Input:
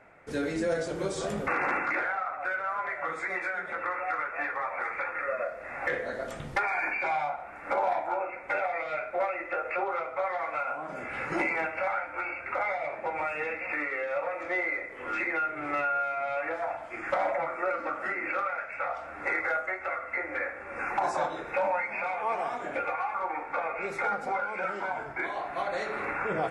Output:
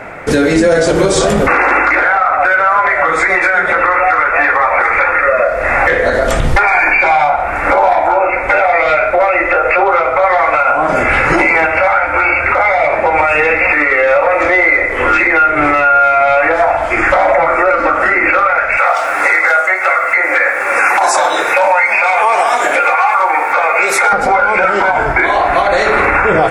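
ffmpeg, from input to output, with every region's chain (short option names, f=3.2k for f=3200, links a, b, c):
-filter_complex "[0:a]asettb=1/sr,asplit=3[a][b][c];[a]atrim=end=1.554[d];[b]atrim=start=1.55:end=2.02,asetpts=PTS-STARTPTS,afade=t=in:d=0.004:c=qsin,afade=t=out:st=0.466:d=0.004:c=qsin,highpass=f=260:w=0.5412,highpass=f=260:w=1.3066,aeval=exprs='val(0)+0.00126*(sin(2*PI*50*n/s)+sin(2*PI*2*50*n/s)/2+sin(2*PI*3*50*n/s)/3+sin(2*PI*4*50*n/s)/4+sin(2*PI*5*50*n/s)/5)':c=same[e];[c]atrim=start=2.016[f];[d][e]acrossfade=d=0.004:c1=hsin:c2=qsin[g];[g][f]acrossfade=d=0.004:c1=qsin:c2=hsin,asettb=1/sr,asplit=3[h][i][j];[h]atrim=end=18.774[k];[i]atrim=start=18.77:end=24.13,asetpts=PTS-STARTPTS,afade=t=in:d=0.004:c=qsin,afade=t=out:st=5.356:d=0.004:c=qsin,highpass=f=400:p=1,aemphasis=mode=production:type=bsi[l];[j]atrim=start=24.126[m];[k][l]acrossfade=d=0.004:c1=hsin:c2=qsin[n];[n][m]acrossfade=d=0.004:c1=qsin:c2=hsin,asubboost=boost=5:cutoff=70,acompressor=threshold=-37dB:ratio=2,alimiter=level_in=29dB:limit=-1dB:release=50:level=0:latency=1,volume=-1dB"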